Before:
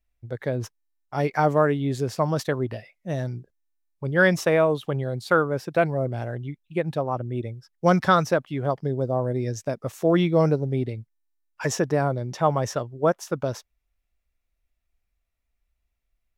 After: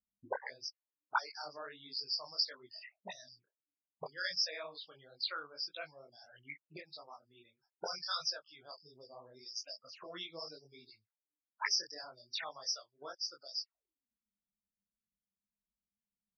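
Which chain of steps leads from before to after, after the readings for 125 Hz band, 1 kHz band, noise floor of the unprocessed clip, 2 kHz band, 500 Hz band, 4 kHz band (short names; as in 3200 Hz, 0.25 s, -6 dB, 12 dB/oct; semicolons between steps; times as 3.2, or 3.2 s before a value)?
under -40 dB, -18.5 dB, -77 dBFS, -15.0 dB, -27.0 dB, +2.0 dB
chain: spectral noise reduction 8 dB; auto-wah 200–4900 Hz, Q 14, up, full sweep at -27 dBFS; loudest bins only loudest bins 32; detuned doubles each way 54 cents; gain +17.5 dB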